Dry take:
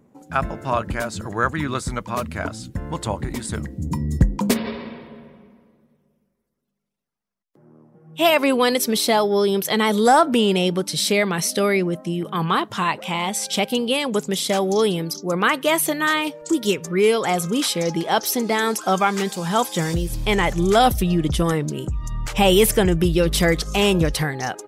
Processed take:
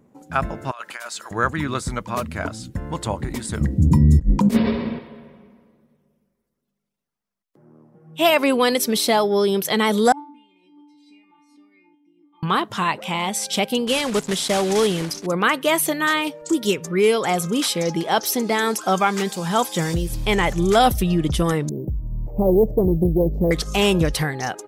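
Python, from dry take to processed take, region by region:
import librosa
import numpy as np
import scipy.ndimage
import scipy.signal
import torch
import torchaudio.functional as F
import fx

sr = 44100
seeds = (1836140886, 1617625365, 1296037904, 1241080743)

y = fx.chain(x, sr, fx.highpass(hz=1100.0, slope=12),
    fx.over_compress(threshold_db=-34.0, ratio=-1.0), at=(0.71, 1.31))
y = fx.chain(y, sr, fx.over_compress(threshold_db=-22.0, ratio=-0.5),
    fx.low_shelf(hz=330.0, db=10.5), at=(3.61, 4.99))
y = fx.chain(y, sr, fx.vowel_filter(vowel='u'),
    fx.stiff_resonator(f0_hz=290.0, decay_s=0.53, stiffness=0.002),
    fx.pre_swell(db_per_s=78.0), at=(10.12, 12.43))
y = fx.chain(y, sr, fx.block_float(bits=3),
    fx.lowpass(hz=11000.0, slope=24), at=(13.87, 15.27))
y = fx.chain(y, sr, fx.cheby2_lowpass(hz=1300.0, order=4, stop_db=40),
    fx.resample_bad(factor=3, down='filtered', up='hold'),
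    fx.doppler_dist(depth_ms=0.25), at=(21.69, 23.51))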